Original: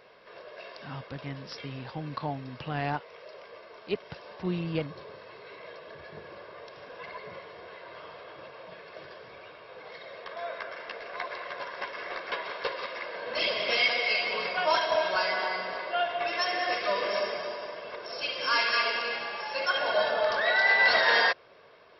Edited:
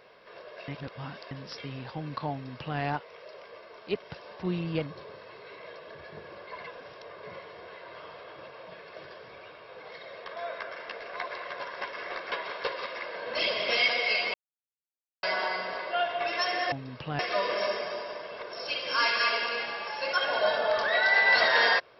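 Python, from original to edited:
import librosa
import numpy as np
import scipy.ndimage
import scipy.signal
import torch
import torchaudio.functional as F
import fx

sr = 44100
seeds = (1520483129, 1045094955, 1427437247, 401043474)

y = fx.edit(x, sr, fx.reverse_span(start_s=0.68, length_s=0.63),
    fx.duplicate(start_s=2.32, length_s=0.47, to_s=16.72),
    fx.reverse_span(start_s=6.47, length_s=0.76),
    fx.silence(start_s=14.34, length_s=0.89), tone=tone)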